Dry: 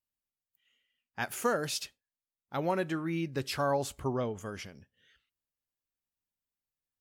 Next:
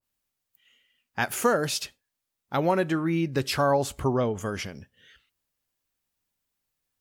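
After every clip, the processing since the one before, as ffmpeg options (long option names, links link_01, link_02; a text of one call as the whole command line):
ffmpeg -i in.wav -filter_complex "[0:a]asplit=2[link_01][link_02];[link_02]acompressor=threshold=-38dB:ratio=6,volume=-1dB[link_03];[link_01][link_03]amix=inputs=2:normalize=0,adynamicequalizer=threshold=0.00891:dfrequency=1600:dqfactor=0.7:tfrequency=1600:tqfactor=0.7:attack=5:release=100:ratio=0.375:range=2:mode=cutabove:tftype=highshelf,volume=5dB" out.wav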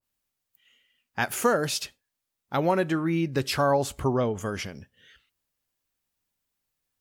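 ffmpeg -i in.wav -af anull out.wav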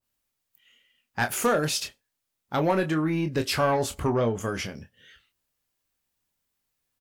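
ffmpeg -i in.wav -filter_complex "[0:a]aeval=exprs='0.316*(cos(1*acos(clip(val(0)/0.316,-1,1)))-cos(1*PI/2))+0.0355*(cos(5*acos(clip(val(0)/0.316,-1,1)))-cos(5*PI/2))':channel_layout=same,asplit=2[link_01][link_02];[link_02]adelay=26,volume=-8dB[link_03];[link_01][link_03]amix=inputs=2:normalize=0,volume=-2.5dB" out.wav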